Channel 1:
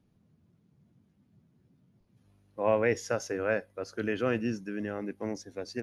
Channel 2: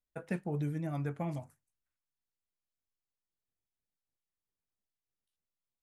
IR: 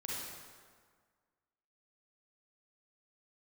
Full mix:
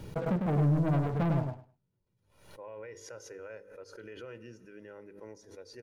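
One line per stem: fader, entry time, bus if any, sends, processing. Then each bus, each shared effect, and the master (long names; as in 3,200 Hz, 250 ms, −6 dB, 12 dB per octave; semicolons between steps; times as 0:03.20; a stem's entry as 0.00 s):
−14.5 dB, 0.00 s, send −19.5 dB, no echo send, mains-hum notches 50/100/150/200/250/300/350/400/450/500 Hz; comb filter 2.1 ms, depth 59%; brickwall limiter −23 dBFS, peak gain reduction 10.5 dB
+2.5 dB, 0.00 s, no send, echo send −4.5 dB, low-pass filter 1,100 Hz 24 dB per octave; parametric band 410 Hz −3 dB 1.5 octaves; leveller curve on the samples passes 3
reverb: on, RT60 1.7 s, pre-delay 33 ms
echo: repeating echo 102 ms, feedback 18%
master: background raised ahead of every attack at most 81 dB per second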